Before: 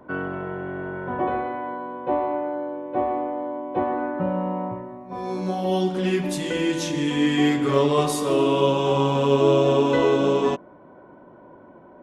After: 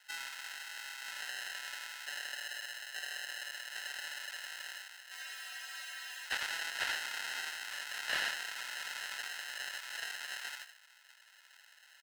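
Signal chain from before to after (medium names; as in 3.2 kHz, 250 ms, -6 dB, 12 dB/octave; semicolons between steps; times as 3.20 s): compression 6:1, threshold -26 dBFS, peak gain reduction 12.5 dB; differentiator; on a send: frequency-shifting echo 83 ms, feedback 37%, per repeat -130 Hz, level -3.5 dB; on the sum: sample-and-hold 38×; high-pass 1.4 kHz 24 dB/octave; treble shelf 10 kHz -6.5 dB; spectral freeze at 5.18 s, 1.08 s; slew-rate limiter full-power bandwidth 21 Hz; trim +16.5 dB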